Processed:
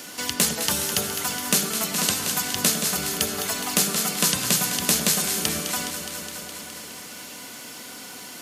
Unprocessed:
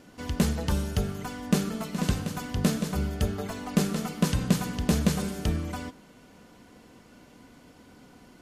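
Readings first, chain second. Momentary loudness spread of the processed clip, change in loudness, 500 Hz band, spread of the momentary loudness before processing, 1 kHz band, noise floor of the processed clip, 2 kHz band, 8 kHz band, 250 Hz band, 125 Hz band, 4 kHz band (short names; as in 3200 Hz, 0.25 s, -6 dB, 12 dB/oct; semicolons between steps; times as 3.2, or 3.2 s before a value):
16 LU, +6.5 dB, +1.5 dB, 8 LU, +6.0 dB, -40 dBFS, +10.0 dB, +17.5 dB, -3.5 dB, -7.0 dB, +13.5 dB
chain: HPF 100 Hz 12 dB/oct; tilt +4 dB/oct; echo with dull and thin repeats by turns 0.104 s, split 850 Hz, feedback 82%, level -8 dB; three-band squash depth 40%; gain +5 dB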